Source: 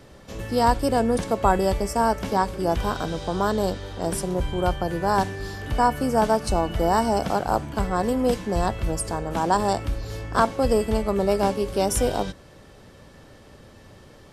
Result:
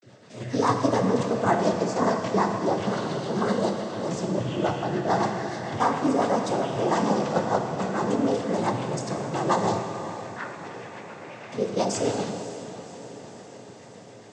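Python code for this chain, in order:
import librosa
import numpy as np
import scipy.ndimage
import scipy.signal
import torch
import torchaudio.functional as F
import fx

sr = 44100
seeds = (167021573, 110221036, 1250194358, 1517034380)

p1 = fx.bandpass_q(x, sr, hz=2000.0, q=3.5, at=(9.79, 11.52))
p2 = fx.noise_vocoder(p1, sr, seeds[0], bands=16)
p3 = fx.rotary(p2, sr, hz=7.0)
p4 = fx.vibrato(p3, sr, rate_hz=0.37, depth_cents=64.0)
p5 = p4 + fx.echo_diffused(p4, sr, ms=559, feedback_pct=68, wet_db=-14.0, dry=0)
y = fx.rev_plate(p5, sr, seeds[1], rt60_s=2.3, hf_ratio=0.95, predelay_ms=0, drr_db=4.5)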